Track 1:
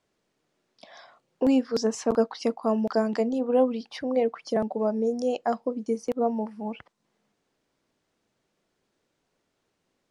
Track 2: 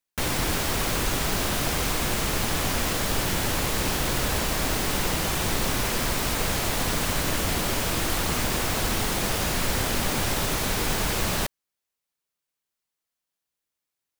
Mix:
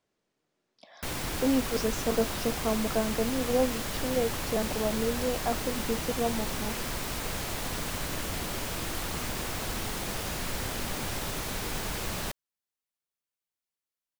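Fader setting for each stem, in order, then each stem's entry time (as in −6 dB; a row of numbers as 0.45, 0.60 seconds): −4.5, −8.0 decibels; 0.00, 0.85 seconds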